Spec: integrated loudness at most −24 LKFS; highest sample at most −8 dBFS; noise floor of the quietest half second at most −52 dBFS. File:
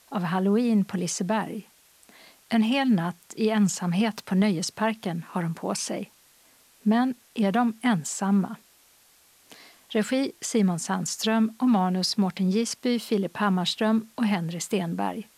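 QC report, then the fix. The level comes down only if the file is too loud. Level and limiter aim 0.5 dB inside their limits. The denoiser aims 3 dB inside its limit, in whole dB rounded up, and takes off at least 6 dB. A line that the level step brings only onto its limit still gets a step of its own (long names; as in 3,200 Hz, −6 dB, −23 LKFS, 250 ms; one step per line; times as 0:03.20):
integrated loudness −25.5 LKFS: in spec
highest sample −11.0 dBFS: in spec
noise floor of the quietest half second −59 dBFS: in spec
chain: no processing needed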